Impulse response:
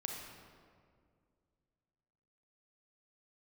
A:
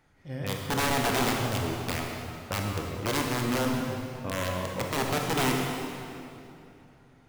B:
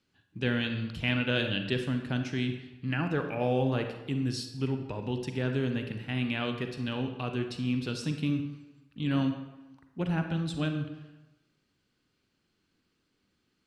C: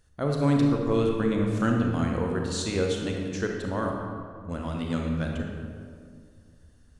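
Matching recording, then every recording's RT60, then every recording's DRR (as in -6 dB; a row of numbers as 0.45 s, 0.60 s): C; 2.8 s, 1.1 s, 2.1 s; 0.0 dB, 5.5 dB, 0.5 dB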